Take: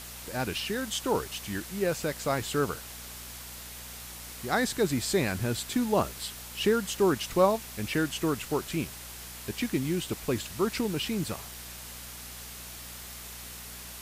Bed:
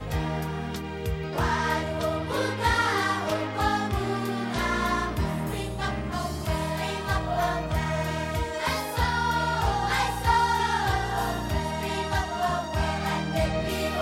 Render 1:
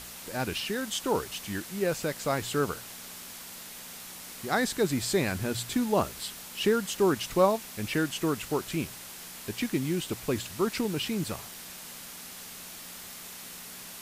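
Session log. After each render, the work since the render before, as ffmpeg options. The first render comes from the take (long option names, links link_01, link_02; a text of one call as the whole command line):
ffmpeg -i in.wav -af "bandreject=frequency=60:width_type=h:width=4,bandreject=frequency=120:width_type=h:width=4" out.wav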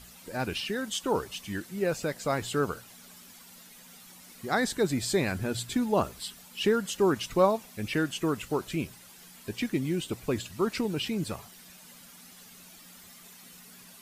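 ffmpeg -i in.wav -af "afftdn=noise_reduction=11:noise_floor=-44" out.wav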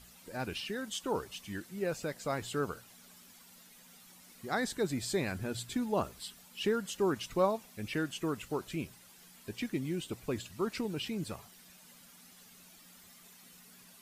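ffmpeg -i in.wav -af "volume=-6dB" out.wav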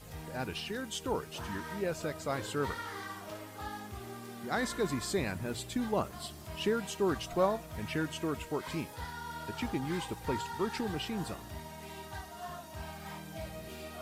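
ffmpeg -i in.wav -i bed.wav -filter_complex "[1:a]volume=-17dB[link_01];[0:a][link_01]amix=inputs=2:normalize=0" out.wav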